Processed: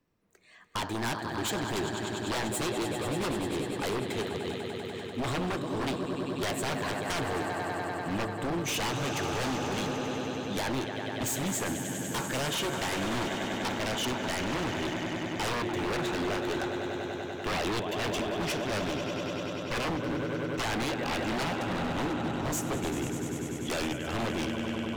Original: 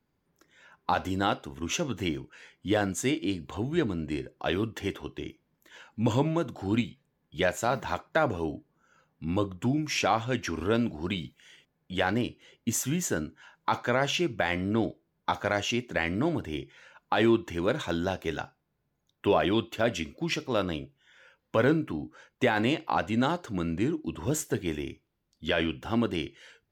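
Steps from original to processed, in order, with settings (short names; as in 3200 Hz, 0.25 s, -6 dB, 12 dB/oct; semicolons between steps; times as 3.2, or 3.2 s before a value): speed glide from 118% -> 96%; swelling echo 98 ms, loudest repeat 5, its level -13 dB; wavefolder -25.5 dBFS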